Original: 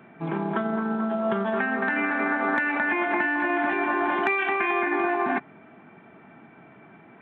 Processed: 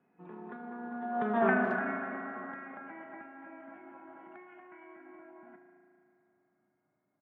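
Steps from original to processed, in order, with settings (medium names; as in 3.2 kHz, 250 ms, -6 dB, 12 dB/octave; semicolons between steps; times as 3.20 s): Doppler pass-by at 1.46 s, 27 m/s, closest 3.1 m; low-pass 3 kHz 12 dB/octave; treble shelf 2.1 kHz -9 dB; speakerphone echo 220 ms, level -19 dB; spring tank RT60 2.8 s, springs 36 ms, chirp 75 ms, DRR 5 dB; trim +1 dB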